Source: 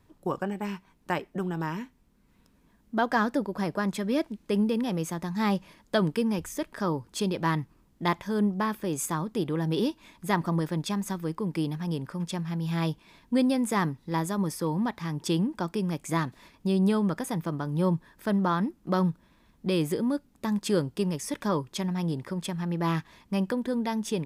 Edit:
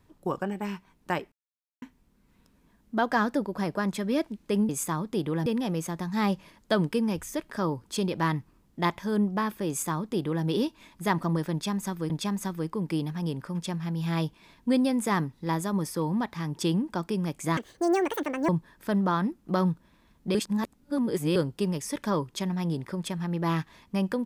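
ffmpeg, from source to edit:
-filter_complex "[0:a]asplit=10[a][b][c][d][e][f][g][h][i][j];[a]atrim=end=1.32,asetpts=PTS-STARTPTS,afade=t=out:st=1.316:d=0.004:c=hsin[k];[b]atrim=start=1.32:end=1.82,asetpts=PTS-STARTPTS,volume=0[l];[c]atrim=start=1.82:end=4.692,asetpts=PTS-STARTPTS,afade=t=in:d=0.004:c=hsin[m];[d]atrim=start=8.908:end=9.682[n];[e]atrim=start=4.688:end=11.332[o];[f]atrim=start=10.748:end=16.224[p];[g]atrim=start=16.22:end=17.87,asetpts=PTS-STARTPTS,asetrate=79380,aresample=44100[q];[h]atrim=start=17.866:end=19.732[r];[i]atrim=start=19.728:end=20.742,asetpts=PTS-STARTPTS,areverse[s];[j]atrim=start=20.738[t];[k][l][m]concat=n=3:v=0:a=1[u];[u][n]acrossfade=d=0.004:c1=hsin:c2=hsin[v];[v][o]acrossfade=d=0.004:c1=hsin:c2=hsin[w];[w][p]acrossfade=d=0.004:c1=hsin:c2=hsin[x];[x][q]acrossfade=d=0.004:c1=hsin:c2=hsin[y];[y][r]acrossfade=d=0.004:c1=hsin:c2=hsin[z];[z][s]acrossfade=d=0.004:c1=hsin:c2=hsin[aa];[aa][t]acrossfade=d=0.004:c1=hsin:c2=hsin"

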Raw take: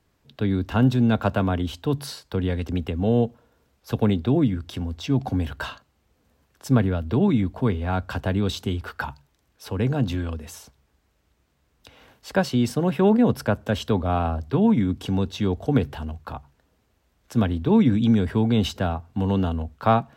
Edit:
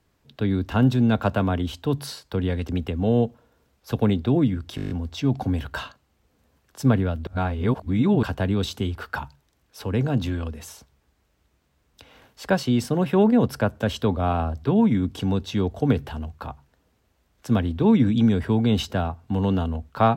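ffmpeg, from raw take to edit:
-filter_complex "[0:a]asplit=10[a][b][c][d][e][f][g][h][i][j];[a]atrim=end=4.782[k];[b]atrim=start=4.758:end=4.782[l];[c]atrim=start=4.758:end=4.782[m];[d]atrim=start=4.758:end=4.782[n];[e]atrim=start=4.758:end=4.782[o];[f]atrim=start=4.758:end=4.782[p];[g]atrim=start=4.758:end=4.782[q];[h]atrim=start=4.758:end=7.132[r];[i]atrim=start=7.128:end=8.092,asetpts=PTS-STARTPTS,areverse[s];[j]atrim=start=8.088[t];[k][l]acrossfade=d=0.004:c1=hsin:c2=hsin[u];[u][m]acrossfade=d=0.004:c1=hsin:c2=hsin[v];[v][n]acrossfade=d=0.004:c1=hsin:c2=hsin[w];[w][o]acrossfade=d=0.004:c1=hsin:c2=hsin[x];[x][p]acrossfade=d=0.004:c1=hsin:c2=hsin[y];[y][q]acrossfade=d=0.004:c1=hsin:c2=hsin[z];[z][r]acrossfade=d=0.004:c1=hsin:c2=hsin[aa];[aa][s]acrossfade=d=0.004:c1=hsin:c2=hsin[ab];[ab][t]acrossfade=d=0.004:c1=hsin:c2=hsin"

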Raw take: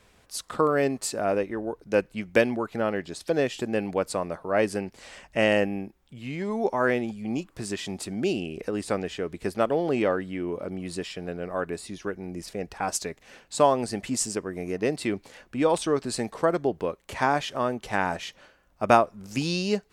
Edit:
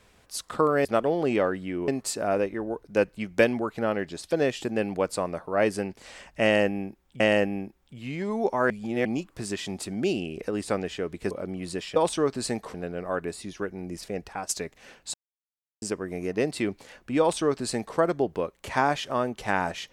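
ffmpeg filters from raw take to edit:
-filter_complex "[0:a]asplit=12[a][b][c][d][e][f][g][h][i][j][k][l];[a]atrim=end=0.852[m];[b]atrim=start=9.508:end=10.542[n];[c]atrim=start=0.848:end=6.172[o];[d]atrim=start=5.398:end=6.902[p];[e]atrim=start=6.898:end=7.252,asetpts=PTS-STARTPTS,areverse[q];[f]atrim=start=7.248:end=9.512[r];[g]atrim=start=10.538:end=11.192[s];[h]atrim=start=15.648:end=16.432[t];[i]atrim=start=11.188:end=12.94,asetpts=PTS-STARTPTS,afade=t=out:st=1.482:d=0.27:silence=0.281838[u];[j]atrim=start=12.94:end=13.59,asetpts=PTS-STARTPTS,afade=t=in:d=0.004:c=hsin:silence=0.281838,afade=t=out:st=0.646:d=0.004:c=hsin[v];[k]atrim=start=13.59:end=14.27,asetpts=PTS-STARTPTS,volume=0[w];[l]atrim=start=14.27,asetpts=PTS-STARTPTS,afade=t=in:d=0.004:c=hsin[x];[m][n]acrossfade=d=0.004:c1=hsin:c2=hsin[y];[y][o]acrossfade=d=0.004:c1=hsin:c2=hsin[z];[z][p]acrossfade=d=0.004:c1=hsin:c2=hsin[aa];[aa][q]acrossfade=d=0.004:c1=hsin:c2=hsin[ab];[ab][r]acrossfade=d=0.004:c1=hsin:c2=hsin[ac];[ac][s]acrossfade=d=0.004:c1=hsin:c2=hsin[ad];[ad][t]acrossfade=d=0.004:c1=hsin:c2=hsin[ae];[u][v][w][x]concat=n=4:v=0:a=1[af];[ae][af]acrossfade=d=0.004:c1=hsin:c2=hsin"

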